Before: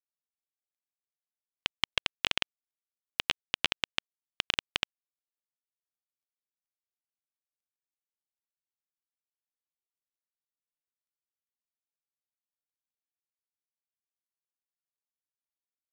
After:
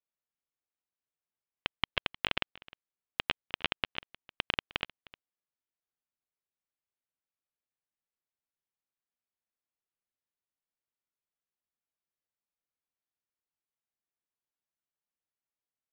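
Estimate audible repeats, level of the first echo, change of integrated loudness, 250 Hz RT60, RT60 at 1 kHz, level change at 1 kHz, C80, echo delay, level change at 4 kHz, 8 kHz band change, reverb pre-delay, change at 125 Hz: 1, −22.0 dB, −3.0 dB, no reverb audible, no reverb audible, +1.0 dB, no reverb audible, 308 ms, −4.0 dB, below −15 dB, no reverb audible, +2.5 dB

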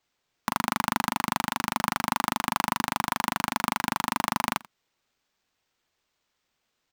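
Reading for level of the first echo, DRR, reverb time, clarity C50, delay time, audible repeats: −22.0 dB, no reverb audible, no reverb audible, no reverb audible, 87 ms, 1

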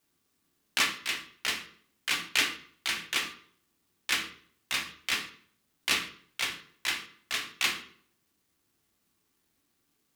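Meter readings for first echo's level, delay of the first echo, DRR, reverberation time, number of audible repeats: no echo audible, no echo audible, 2.5 dB, 0.60 s, no echo audible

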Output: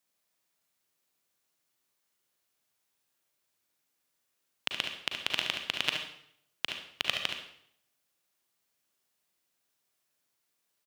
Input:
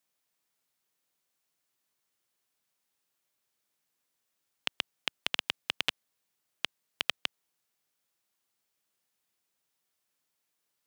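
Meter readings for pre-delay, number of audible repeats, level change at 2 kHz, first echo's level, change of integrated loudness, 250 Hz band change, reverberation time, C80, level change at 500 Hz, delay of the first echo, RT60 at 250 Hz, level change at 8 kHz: 37 ms, 1, +2.0 dB, −7.0 dB, +1.5 dB, +2.5 dB, 0.65 s, 8.5 dB, +2.5 dB, 72 ms, 0.70 s, +2.0 dB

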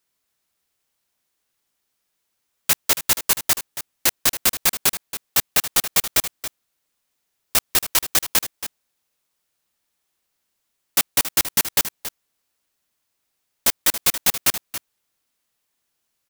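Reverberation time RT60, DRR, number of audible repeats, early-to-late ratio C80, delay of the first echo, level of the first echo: no reverb audible, no reverb audible, 1, no reverb audible, 277 ms, −12.0 dB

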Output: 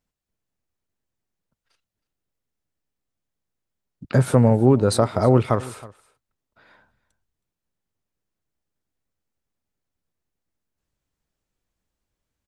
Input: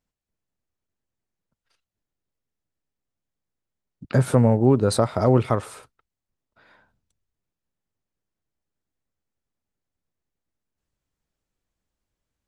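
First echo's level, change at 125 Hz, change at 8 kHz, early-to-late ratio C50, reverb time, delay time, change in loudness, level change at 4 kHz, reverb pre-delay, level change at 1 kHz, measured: −20.5 dB, +1.5 dB, +1.5 dB, no reverb audible, no reverb audible, 319 ms, +1.5 dB, +1.5 dB, no reverb audible, +1.5 dB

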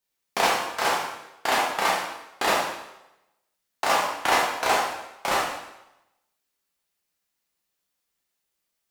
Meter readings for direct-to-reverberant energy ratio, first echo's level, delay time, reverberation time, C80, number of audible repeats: −4.5 dB, no echo audible, no echo audible, 0.90 s, 5.5 dB, no echo audible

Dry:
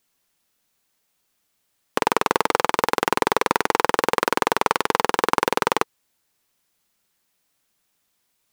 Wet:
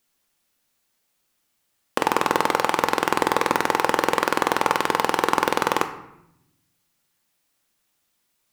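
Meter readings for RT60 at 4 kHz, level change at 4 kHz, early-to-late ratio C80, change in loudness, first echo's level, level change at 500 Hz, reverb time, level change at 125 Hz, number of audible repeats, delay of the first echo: 0.55 s, −0.5 dB, 13.5 dB, 0.0 dB, no echo audible, −1.0 dB, 0.80 s, +1.0 dB, no echo audible, no echo audible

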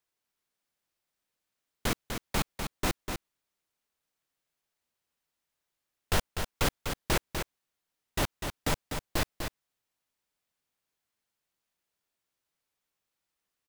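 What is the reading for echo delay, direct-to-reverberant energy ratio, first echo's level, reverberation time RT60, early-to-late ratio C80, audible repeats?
248 ms, no reverb audible, −6.5 dB, no reverb audible, no reverb audible, 1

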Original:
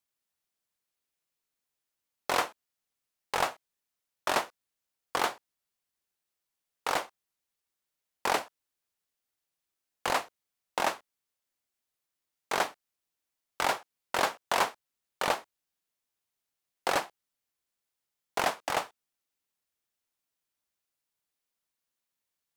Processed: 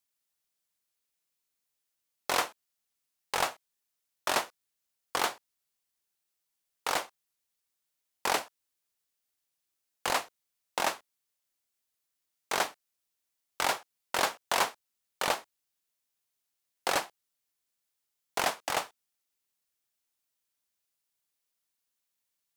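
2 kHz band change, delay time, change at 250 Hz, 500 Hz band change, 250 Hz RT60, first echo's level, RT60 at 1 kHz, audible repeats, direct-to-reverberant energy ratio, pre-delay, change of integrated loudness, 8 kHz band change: 0.0 dB, no echo audible, −2.0 dB, −2.0 dB, no reverb audible, no echo audible, no reverb audible, no echo audible, no reverb audible, no reverb audible, 0.0 dB, +3.5 dB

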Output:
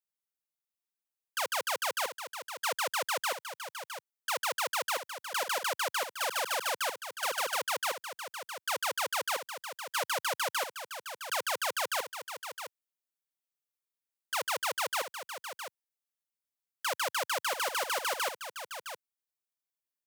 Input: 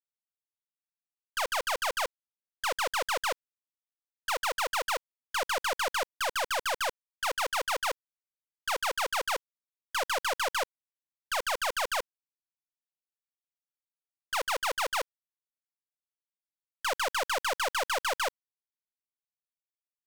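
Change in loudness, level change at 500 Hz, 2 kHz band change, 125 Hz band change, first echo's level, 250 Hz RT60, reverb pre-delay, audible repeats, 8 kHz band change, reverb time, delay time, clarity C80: −2.0 dB, −2.5 dB, −2.0 dB, can't be measured, −9.5 dB, no reverb audible, no reverb audible, 1, +1.0 dB, no reverb audible, 662 ms, no reverb audible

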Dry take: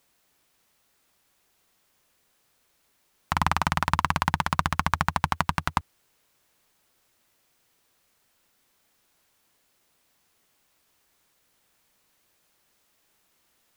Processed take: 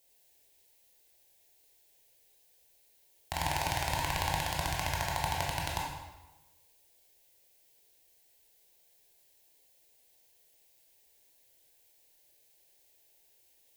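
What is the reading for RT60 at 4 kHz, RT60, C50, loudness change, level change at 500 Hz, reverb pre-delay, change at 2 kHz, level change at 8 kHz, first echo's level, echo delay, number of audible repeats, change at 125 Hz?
0.90 s, 1.1 s, 1.5 dB, −7.0 dB, −1.0 dB, 16 ms, −7.0 dB, +1.0 dB, no echo audible, no echo audible, no echo audible, −6.5 dB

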